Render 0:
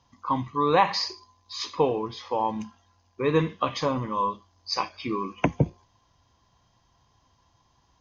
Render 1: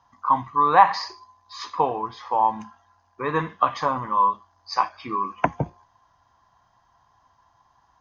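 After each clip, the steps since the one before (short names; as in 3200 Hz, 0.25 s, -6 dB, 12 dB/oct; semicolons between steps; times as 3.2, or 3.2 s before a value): band shelf 1100 Hz +12 dB; gain -4.5 dB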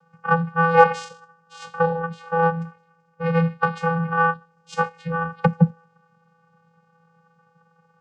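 added harmonics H 8 -29 dB, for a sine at -1 dBFS; vocoder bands 8, square 166 Hz; gain +2.5 dB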